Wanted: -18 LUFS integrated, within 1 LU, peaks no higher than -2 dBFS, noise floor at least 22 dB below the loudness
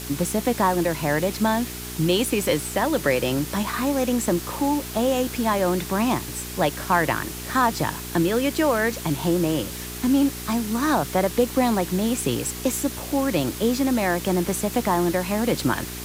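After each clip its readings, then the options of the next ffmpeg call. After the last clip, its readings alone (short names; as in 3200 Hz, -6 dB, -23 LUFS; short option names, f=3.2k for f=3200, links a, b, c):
hum 60 Hz; harmonics up to 420 Hz; hum level -35 dBFS; noise floor -34 dBFS; noise floor target -45 dBFS; loudness -23.0 LUFS; peak -6.5 dBFS; loudness target -18.0 LUFS
-> -af "bandreject=f=60:t=h:w=4,bandreject=f=120:t=h:w=4,bandreject=f=180:t=h:w=4,bandreject=f=240:t=h:w=4,bandreject=f=300:t=h:w=4,bandreject=f=360:t=h:w=4,bandreject=f=420:t=h:w=4"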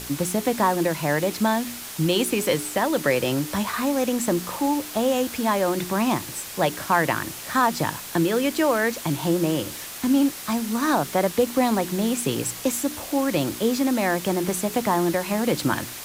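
hum none; noise floor -36 dBFS; noise floor target -46 dBFS
-> -af "afftdn=nr=10:nf=-36"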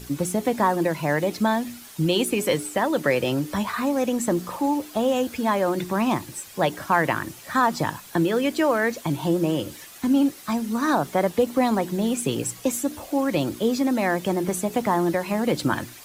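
noise floor -44 dBFS; noise floor target -46 dBFS
-> -af "afftdn=nr=6:nf=-44"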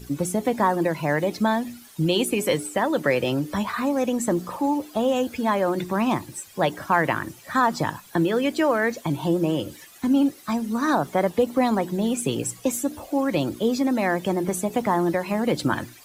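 noise floor -48 dBFS; loudness -24.0 LUFS; peak -6.5 dBFS; loudness target -18.0 LUFS
-> -af "volume=6dB,alimiter=limit=-2dB:level=0:latency=1"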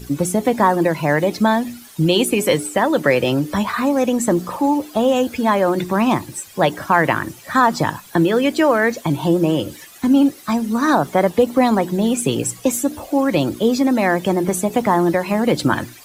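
loudness -18.0 LUFS; peak -2.0 dBFS; noise floor -42 dBFS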